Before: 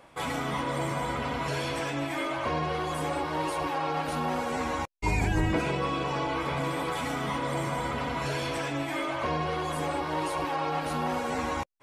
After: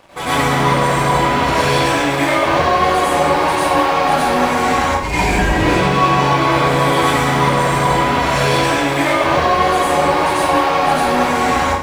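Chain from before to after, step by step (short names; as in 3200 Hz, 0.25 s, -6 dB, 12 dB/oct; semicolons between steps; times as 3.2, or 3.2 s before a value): de-hum 104.3 Hz, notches 3; sample leveller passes 3; plate-style reverb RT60 0.71 s, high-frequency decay 0.8×, pre-delay 80 ms, DRR -8.5 dB; gain -1 dB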